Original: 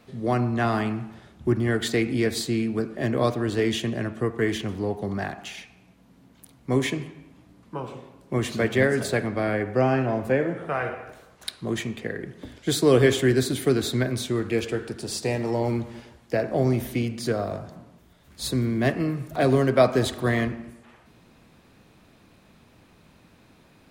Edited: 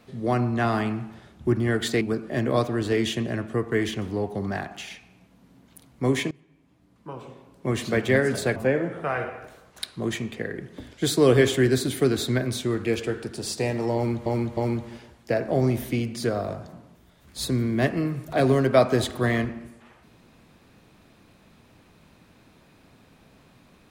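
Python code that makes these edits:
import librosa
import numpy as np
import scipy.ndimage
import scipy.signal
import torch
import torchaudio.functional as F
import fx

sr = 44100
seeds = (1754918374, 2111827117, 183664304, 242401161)

y = fx.edit(x, sr, fx.cut(start_s=2.01, length_s=0.67),
    fx.fade_in_from(start_s=6.98, length_s=1.51, floor_db=-21.5),
    fx.cut(start_s=9.23, length_s=0.98),
    fx.repeat(start_s=15.6, length_s=0.31, count=3), tone=tone)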